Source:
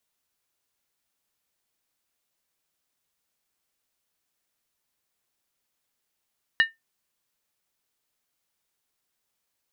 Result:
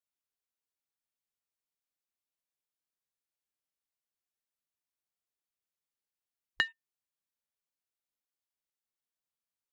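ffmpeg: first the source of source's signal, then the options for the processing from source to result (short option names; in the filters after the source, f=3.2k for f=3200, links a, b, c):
-f lavfi -i "aevalsrc='0.251*pow(10,-3*t/0.17)*sin(2*PI*1810*t)+0.0944*pow(10,-3*t/0.135)*sin(2*PI*2885.1*t)+0.0355*pow(10,-3*t/0.116)*sin(2*PI*3866.2*t)+0.0133*pow(10,-3*t/0.112)*sin(2*PI*4155.8*t)+0.00501*pow(10,-3*t/0.104)*sin(2*PI*4801.9*t)':d=0.63:s=44100"
-filter_complex "[0:a]afwtdn=0.00316,acrossover=split=470|3300[a][b][c];[b]acompressor=threshold=-29dB:ratio=6[d];[a][d][c]amix=inputs=3:normalize=0"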